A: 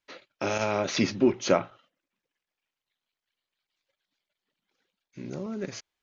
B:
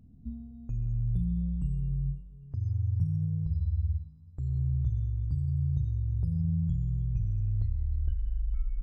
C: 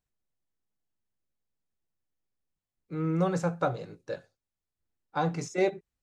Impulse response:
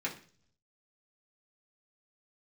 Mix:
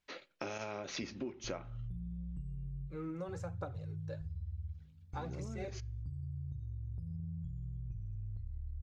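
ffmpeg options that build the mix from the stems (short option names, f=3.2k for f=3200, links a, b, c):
-filter_complex "[0:a]volume=-2.5dB,asplit=2[a][b];[b]volume=-19dB[c];[1:a]adelay=750,volume=-6dB[d];[2:a]aphaser=in_gain=1:out_gain=1:delay=3.9:decay=0.48:speed=1.1:type=triangular,volume=-6dB[e];[3:a]atrim=start_sample=2205[f];[c][f]afir=irnorm=-1:irlink=0[g];[a][d][e][g]amix=inputs=4:normalize=0,acompressor=threshold=-39dB:ratio=6"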